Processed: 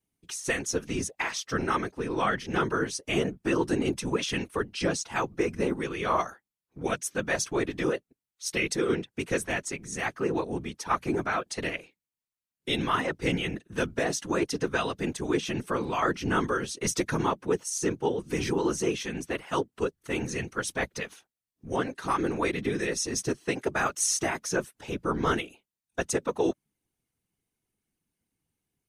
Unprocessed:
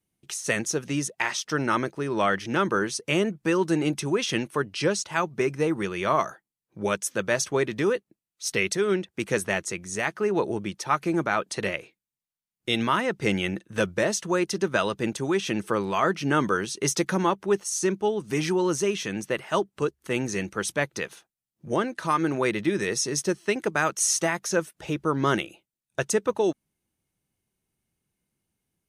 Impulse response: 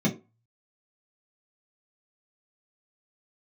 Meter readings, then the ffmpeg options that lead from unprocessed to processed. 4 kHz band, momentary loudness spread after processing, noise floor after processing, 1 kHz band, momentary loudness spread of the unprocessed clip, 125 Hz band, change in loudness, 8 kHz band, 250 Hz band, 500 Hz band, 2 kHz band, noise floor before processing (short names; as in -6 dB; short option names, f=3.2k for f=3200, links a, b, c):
-3.0 dB, 6 LU, under -85 dBFS, -3.0 dB, 6 LU, -3.0 dB, -3.0 dB, -3.0 dB, -3.0 dB, -4.0 dB, -3.0 dB, under -85 dBFS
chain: -af "afftfilt=real='hypot(re,im)*cos(2*PI*random(0))':imag='hypot(re,im)*sin(2*PI*random(1))':win_size=512:overlap=0.75,bandreject=f=590:w=12,volume=3dB"